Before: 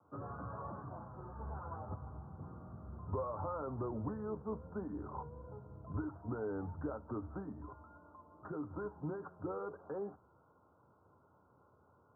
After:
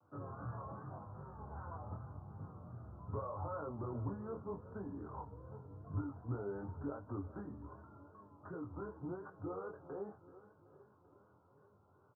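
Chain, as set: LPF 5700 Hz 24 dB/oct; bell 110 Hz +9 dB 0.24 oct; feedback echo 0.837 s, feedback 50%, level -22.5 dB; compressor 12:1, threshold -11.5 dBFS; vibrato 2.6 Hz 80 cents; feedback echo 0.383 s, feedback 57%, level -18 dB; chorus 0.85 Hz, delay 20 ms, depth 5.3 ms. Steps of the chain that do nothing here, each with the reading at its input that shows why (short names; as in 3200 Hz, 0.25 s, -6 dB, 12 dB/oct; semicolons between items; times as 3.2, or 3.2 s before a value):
LPF 5700 Hz: input band ends at 1600 Hz; compressor, threshold -11.5 dBFS: input peak -25.5 dBFS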